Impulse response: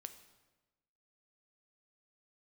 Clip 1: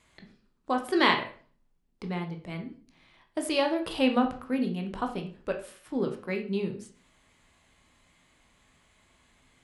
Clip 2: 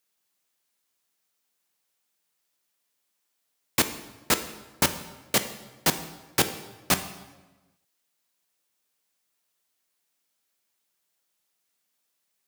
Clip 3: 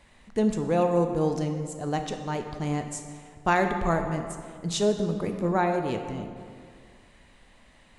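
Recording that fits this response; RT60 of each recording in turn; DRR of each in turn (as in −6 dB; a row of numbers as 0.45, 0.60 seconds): 2; 0.45, 1.2, 2.1 seconds; 3.5, 8.5, 5.5 decibels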